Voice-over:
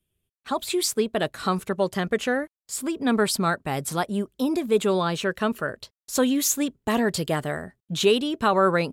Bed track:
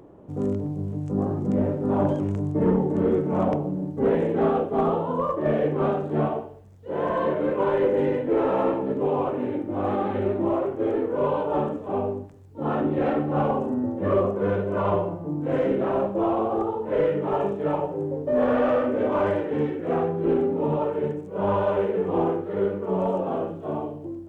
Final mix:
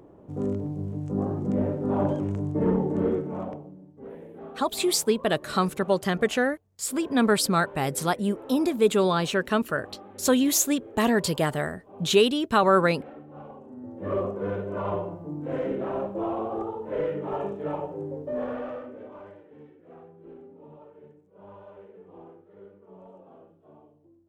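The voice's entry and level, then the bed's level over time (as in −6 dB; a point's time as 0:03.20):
4.10 s, +0.5 dB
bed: 0:03.06 −2.5 dB
0:03.86 −20.5 dB
0:13.62 −20.5 dB
0:14.13 −6 dB
0:18.20 −6 dB
0:19.37 −24.5 dB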